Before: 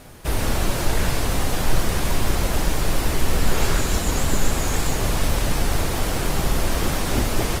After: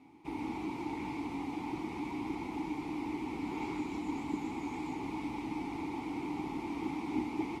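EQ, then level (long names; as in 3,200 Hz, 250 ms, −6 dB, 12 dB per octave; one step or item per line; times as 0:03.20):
formant filter u
high-pass filter 45 Hz
parametric band 2,800 Hz −3.5 dB 0.47 octaves
0.0 dB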